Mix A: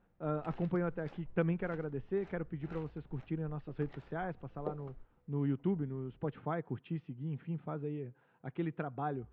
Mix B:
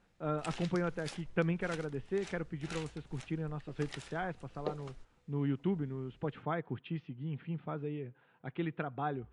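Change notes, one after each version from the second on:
background: remove tape spacing loss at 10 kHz 31 dB; master: add high shelf 2300 Hz +12 dB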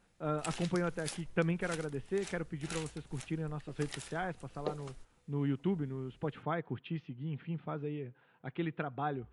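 master: remove air absorption 72 m

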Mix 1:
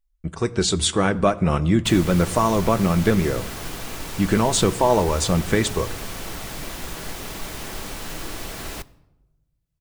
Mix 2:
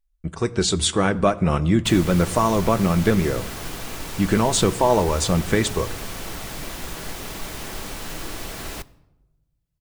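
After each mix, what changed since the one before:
none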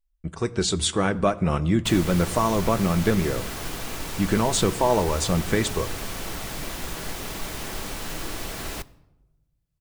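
speech -3.0 dB

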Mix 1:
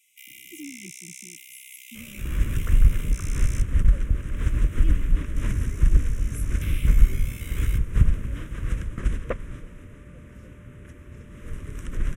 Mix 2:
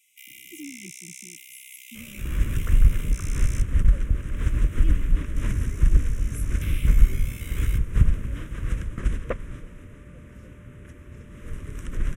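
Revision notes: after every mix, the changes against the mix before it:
none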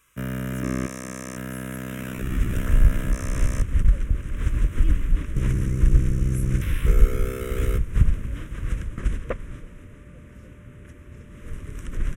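first sound: remove brick-wall FIR high-pass 2000 Hz

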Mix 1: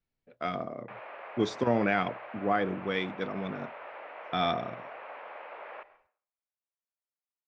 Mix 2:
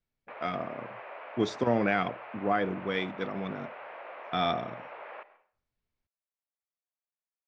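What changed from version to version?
background: entry -0.60 s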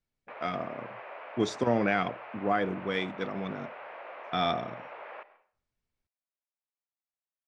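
master: remove LPF 5400 Hz 12 dB/oct

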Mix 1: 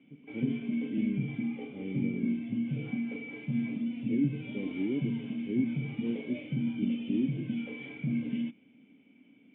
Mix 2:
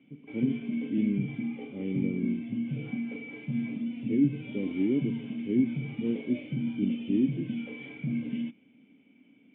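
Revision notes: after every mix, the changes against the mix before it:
speech +5.0 dB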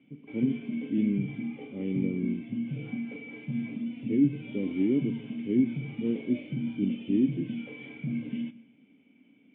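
background -3.5 dB; reverb: on, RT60 0.75 s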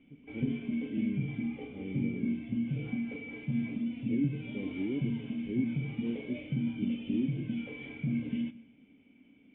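speech -8.5 dB; master: remove HPF 120 Hz 24 dB/oct

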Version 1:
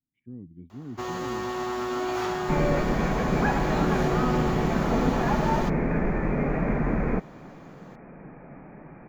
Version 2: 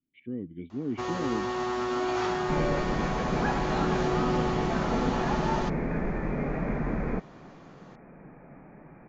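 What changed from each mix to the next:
speech: remove EQ curve 130 Hz 0 dB, 510 Hz -14 dB, 910 Hz -2 dB, 2300 Hz -23 dB; second sound -4.5 dB; master: add steep low-pass 6800 Hz 36 dB/oct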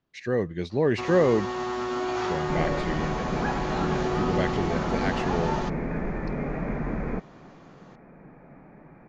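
speech: remove vocal tract filter i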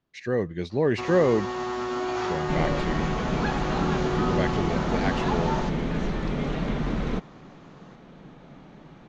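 second sound: remove rippled Chebyshev low-pass 2500 Hz, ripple 3 dB

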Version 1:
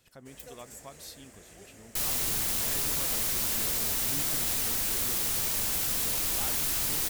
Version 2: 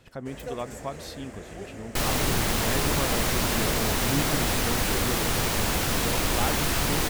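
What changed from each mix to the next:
master: remove pre-emphasis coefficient 0.8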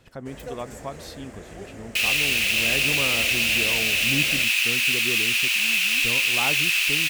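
second sound: add resonant high-pass 2600 Hz, resonance Q 9.3

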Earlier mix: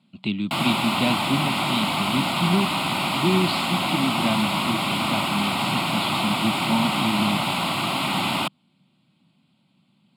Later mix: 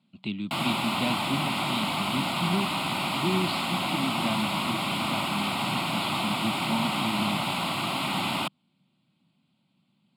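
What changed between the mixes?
speech -6.5 dB; background -4.5 dB

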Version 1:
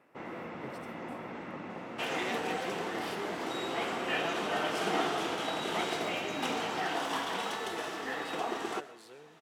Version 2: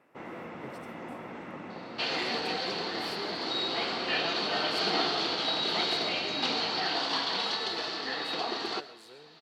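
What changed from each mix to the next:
second sound: add synth low-pass 4400 Hz, resonance Q 13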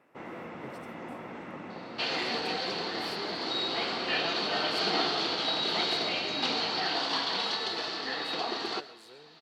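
speech: send -7.5 dB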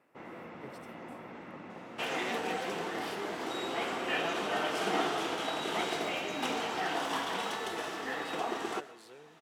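first sound -4.5 dB; second sound: remove synth low-pass 4400 Hz, resonance Q 13

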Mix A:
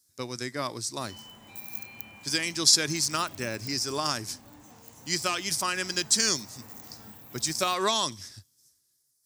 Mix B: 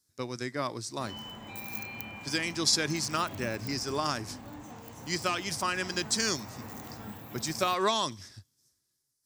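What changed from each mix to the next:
background +7.5 dB; master: add high shelf 4500 Hz -10 dB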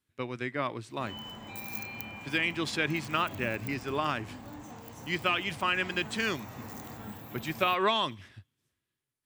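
speech: add resonant high shelf 3900 Hz -11 dB, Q 3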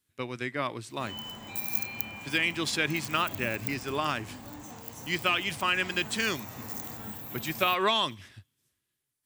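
master: add high shelf 4500 Hz +10 dB

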